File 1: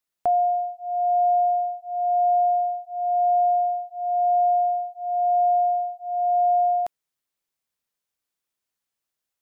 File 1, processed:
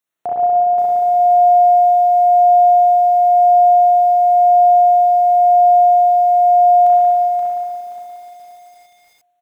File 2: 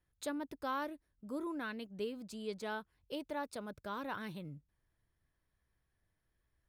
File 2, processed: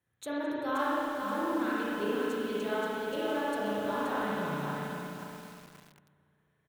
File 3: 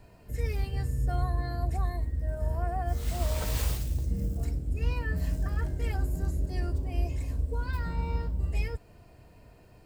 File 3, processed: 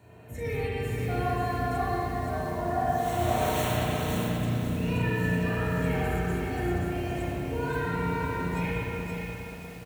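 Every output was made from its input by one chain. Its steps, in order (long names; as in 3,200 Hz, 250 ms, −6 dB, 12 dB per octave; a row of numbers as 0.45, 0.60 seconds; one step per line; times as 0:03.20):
high-pass filter 85 Hz 24 dB per octave
dynamic equaliser 580 Hz, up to −5 dB, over −37 dBFS, Q 3.4
Butterworth band-reject 4,900 Hz, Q 5.2
on a send: single-tap delay 211 ms −22 dB
on the sum: spring reverb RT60 2.8 s, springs 34/59 ms, chirp 75 ms, DRR −8 dB
feedback echo at a low word length 527 ms, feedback 35%, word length 8 bits, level −4 dB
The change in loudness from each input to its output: +11.0, +9.5, +2.5 LU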